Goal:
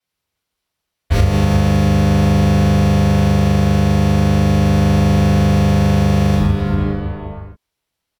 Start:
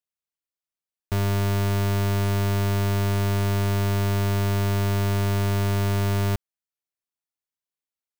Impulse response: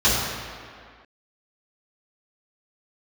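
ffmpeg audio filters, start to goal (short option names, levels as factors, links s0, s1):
-filter_complex "[1:a]atrim=start_sample=2205,asetrate=36603,aresample=44100[s0];[0:a][s0]afir=irnorm=-1:irlink=0,asplit=2[s1][s2];[s2]asetrate=33038,aresample=44100,atempo=1.33484,volume=0.891[s3];[s1][s3]amix=inputs=2:normalize=0,acompressor=threshold=0.562:ratio=6,volume=0.531"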